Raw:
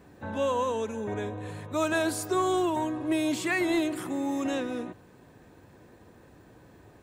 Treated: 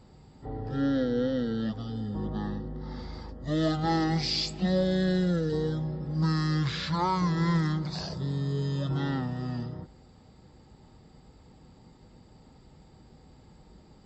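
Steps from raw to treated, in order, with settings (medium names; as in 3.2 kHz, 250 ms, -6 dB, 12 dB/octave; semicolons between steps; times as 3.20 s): peaking EQ 9.6 kHz +9.5 dB 0.29 oct; speed mistake 15 ips tape played at 7.5 ips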